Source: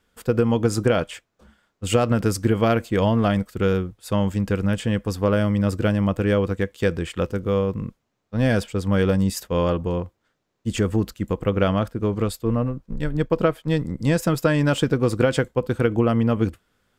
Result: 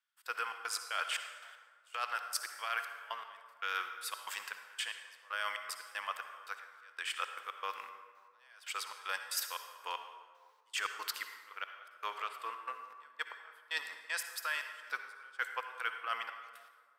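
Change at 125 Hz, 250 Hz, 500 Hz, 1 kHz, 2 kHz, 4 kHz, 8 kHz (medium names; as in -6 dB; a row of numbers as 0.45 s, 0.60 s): under -40 dB, under -40 dB, -31.5 dB, -9.5 dB, -6.5 dB, -6.5 dB, -7.0 dB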